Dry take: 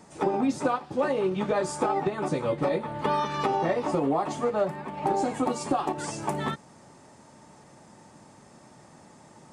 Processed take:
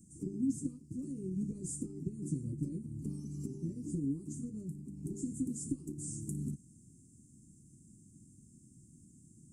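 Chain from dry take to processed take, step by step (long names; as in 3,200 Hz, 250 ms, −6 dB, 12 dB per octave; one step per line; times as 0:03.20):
elliptic band-stop filter 310–7,500 Hz, stop band 40 dB
guitar amp tone stack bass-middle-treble 6-0-2
level +13.5 dB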